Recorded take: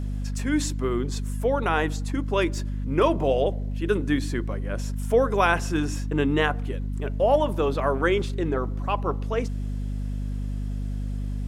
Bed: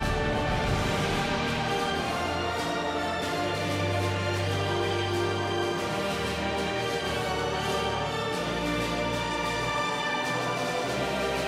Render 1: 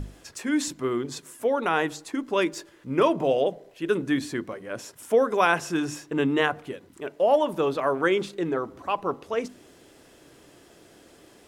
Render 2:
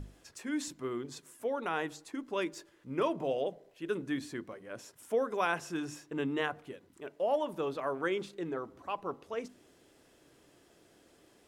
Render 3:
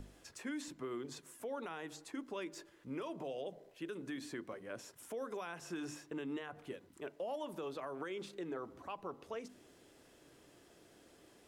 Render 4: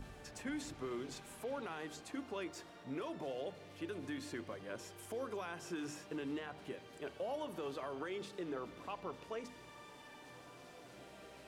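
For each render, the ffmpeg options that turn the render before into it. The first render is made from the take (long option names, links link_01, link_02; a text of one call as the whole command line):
ffmpeg -i in.wav -af "bandreject=frequency=50:width_type=h:width=6,bandreject=frequency=100:width_type=h:width=6,bandreject=frequency=150:width_type=h:width=6,bandreject=frequency=200:width_type=h:width=6,bandreject=frequency=250:width_type=h:width=6" out.wav
ffmpeg -i in.wav -af "volume=-10dB" out.wav
ffmpeg -i in.wav -filter_complex "[0:a]acrossover=split=240|3100[link_01][link_02][link_03];[link_01]acompressor=threshold=-52dB:ratio=4[link_04];[link_02]acompressor=threshold=-36dB:ratio=4[link_05];[link_03]acompressor=threshold=-51dB:ratio=4[link_06];[link_04][link_05][link_06]amix=inputs=3:normalize=0,alimiter=level_in=9.5dB:limit=-24dB:level=0:latency=1:release=146,volume=-9.5dB" out.wav
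ffmpeg -i in.wav -i bed.wav -filter_complex "[1:a]volume=-28dB[link_01];[0:a][link_01]amix=inputs=2:normalize=0" out.wav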